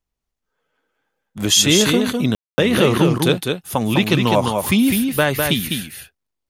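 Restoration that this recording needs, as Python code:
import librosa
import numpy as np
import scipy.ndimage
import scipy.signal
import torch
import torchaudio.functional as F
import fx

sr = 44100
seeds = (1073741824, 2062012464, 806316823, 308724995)

y = fx.fix_ambience(x, sr, seeds[0], print_start_s=0.0, print_end_s=0.5, start_s=2.35, end_s=2.58)
y = fx.fix_echo_inverse(y, sr, delay_ms=203, level_db=-4.5)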